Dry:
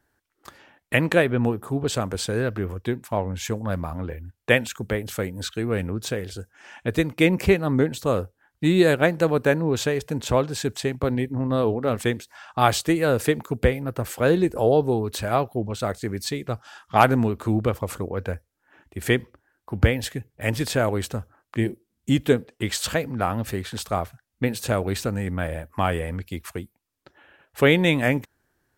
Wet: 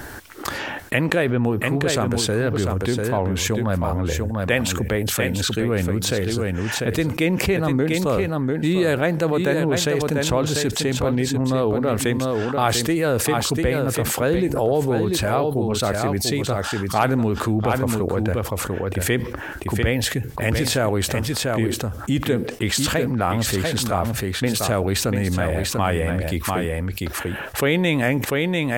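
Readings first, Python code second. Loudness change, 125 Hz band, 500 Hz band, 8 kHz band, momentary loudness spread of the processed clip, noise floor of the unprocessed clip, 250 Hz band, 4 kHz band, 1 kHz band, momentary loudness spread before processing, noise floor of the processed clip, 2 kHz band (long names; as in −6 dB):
+2.5 dB, +3.5 dB, +2.0 dB, +8.5 dB, 4 LU, −76 dBFS, +3.0 dB, +6.0 dB, +1.5 dB, 13 LU, −32 dBFS, +2.0 dB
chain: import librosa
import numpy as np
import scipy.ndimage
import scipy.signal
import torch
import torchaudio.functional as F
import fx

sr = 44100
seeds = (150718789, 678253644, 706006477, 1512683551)

y = x + 10.0 ** (-8.5 / 20.0) * np.pad(x, (int(694 * sr / 1000.0), 0))[:len(x)]
y = fx.env_flatten(y, sr, amount_pct=70)
y = y * 10.0 ** (-5.0 / 20.0)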